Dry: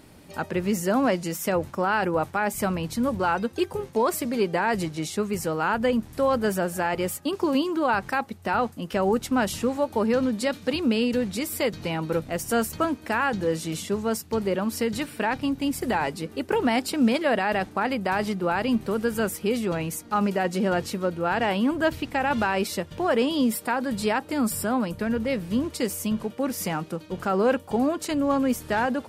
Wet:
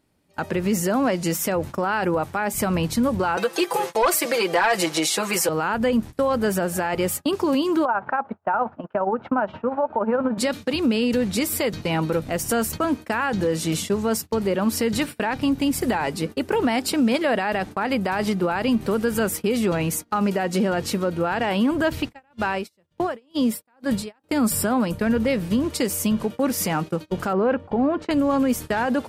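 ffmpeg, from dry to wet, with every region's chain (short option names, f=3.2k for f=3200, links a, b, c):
-filter_complex "[0:a]asettb=1/sr,asplit=3[a][b][c];[a]atrim=end=3.374[d];[b]atrim=start=3.37:end=5.49,asetpts=PTS-STARTPTS,afade=t=in:d=0.004:c=qsin,afade=t=out:st=2.116:d=0.004:c=qsin,highpass=540,aecho=1:1:6:0.93,atrim=end_sample=93492,aeval=exprs='0.335*sin(PI/2*1.78*val(0)/0.335)':c=same[e];[c]atrim=start=5.486[f];[d][e]acrossfade=d=0.004:c1=hsin:c2=qsin[g];[g][f]acrossfade=d=0.004:c1=qsin:c2=hsin,asettb=1/sr,asplit=3[h][i][j];[h]atrim=end=7.854[k];[i]atrim=start=7.85:end=10.38,asetpts=PTS-STARTPTS,afade=t=in:d=0.004:c=qsin,afade=t=out:st=2.526:d=0.004:c=qsin,tremolo=f=17:d=0.61,highpass=150,equalizer=f=160:t=q:w=4:g=-5,equalizer=f=320:t=q:w=4:g=-4,equalizer=f=640:t=q:w=4:g=9,equalizer=f=920:t=q:w=4:g=9,equalizer=f=1.4k:t=q:w=4:g=7,equalizer=f=2k:t=q:w=4:g=-7,lowpass=f=2.1k:w=0.5412,lowpass=f=2.1k:w=1.3066[l];[j]atrim=start=10.376[m];[k][l]acrossfade=d=0.004:c1=hsin:c2=qsin[n];[n][m]acrossfade=d=0.004:c1=qsin:c2=hsin,asettb=1/sr,asplit=3[o][p][q];[o]atrim=end=22.024[r];[p]atrim=start=22.02:end=24.24,asetpts=PTS-STARTPTS,afade=t=in:d=0.004:c=qsin,afade=t=out:st=2.216:d=0.004:c=qsin,agate=range=-11dB:threshold=-38dB:ratio=16:release=100:detection=peak,aeval=exprs='val(0)*pow(10,-21*(0.5-0.5*cos(2*PI*2.1*n/s))/20)':c=same[s];[q]atrim=start=24.236[t];[r][s]acrossfade=d=0.004:c1=hsin:c2=qsin[u];[u][t]acrossfade=d=0.004:c1=qsin:c2=hsin,asettb=1/sr,asplit=3[v][w][x];[v]atrim=end=27.334[y];[w]atrim=start=27.33:end=28.11,asetpts=PTS-STARTPTS,afade=t=in:d=0.004:c=qsin,afade=t=out:st=0.776:d=0.004:c=qsin,lowpass=2.1k,lowshelf=f=77:g=3.5[z];[x]atrim=start=28.106[aa];[y][z]acrossfade=d=0.004:c1=hsin:c2=qsin[ab];[ab][aa]acrossfade=d=0.004:c1=qsin:c2=hsin,agate=range=-24dB:threshold=-35dB:ratio=16:detection=peak,alimiter=limit=-19.5dB:level=0:latency=1:release=108,volume=6.5dB"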